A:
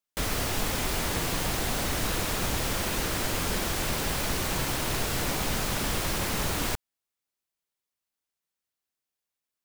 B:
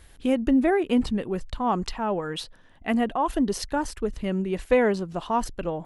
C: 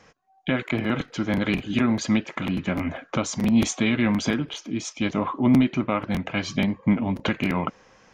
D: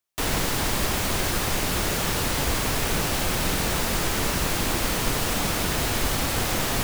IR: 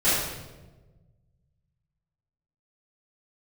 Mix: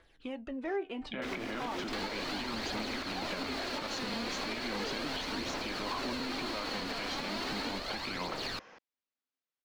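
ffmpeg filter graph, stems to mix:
-filter_complex "[0:a]equalizer=f=260:t=o:w=0.3:g=15,adelay=1050,volume=-5dB[a];[1:a]alimiter=limit=-16.5dB:level=0:latency=1:release=53,flanger=delay=6:depth=5.3:regen=73:speed=0.43:shape=sinusoidal,volume=-4dB[b];[2:a]acompressor=threshold=-24dB:ratio=6,adelay=650,volume=1dB[c];[3:a]equalizer=f=4.3k:t=o:w=0.21:g=13.5,adelay=1750,volume=-1.5dB[d];[a][c]amix=inputs=2:normalize=0,alimiter=limit=-21dB:level=0:latency=1:release=84,volume=0dB[e];[b][d]amix=inputs=2:normalize=0,aphaser=in_gain=1:out_gain=1:delay=4.4:decay=0.5:speed=0.36:type=triangular,acompressor=threshold=-28dB:ratio=6,volume=0dB[f];[e][f]amix=inputs=2:normalize=0,acrossover=split=280 5100:gain=0.2 1 0.0891[g][h][i];[g][h][i]amix=inputs=3:normalize=0,alimiter=level_in=2.5dB:limit=-24dB:level=0:latency=1:release=187,volume=-2.5dB"

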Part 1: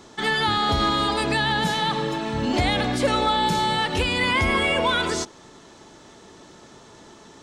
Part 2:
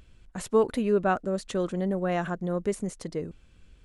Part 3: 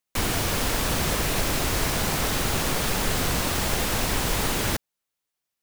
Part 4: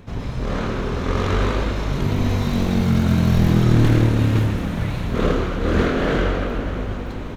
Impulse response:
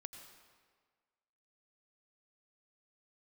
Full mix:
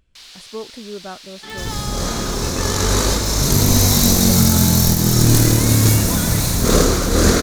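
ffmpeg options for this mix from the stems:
-filter_complex "[0:a]adelay=1250,volume=-10dB[a];[1:a]volume=-8.5dB,asplit=2[b][c];[2:a]bandpass=f=4.2k:t=q:w=2.3:csg=0,volume=-5dB[d];[3:a]aexciter=amount=7.9:drive=8.8:freq=4.5k,adelay=1500,volume=2.5dB,asplit=2[e][f];[f]volume=-5dB[g];[c]apad=whole_len=390740[h];[e][h]sidechaincompress=threshold=-38dB:ratio=8:attack=11:release=641[i];[4:a]atrim=start_sample=2205[j];[g][j]afir=irnorm=-1:irlink=0[k];[a][b][d][i][k]amix=inputs=5:normalize=0,alimiter=limit=-1dB:level=0:latency=1:release=432"

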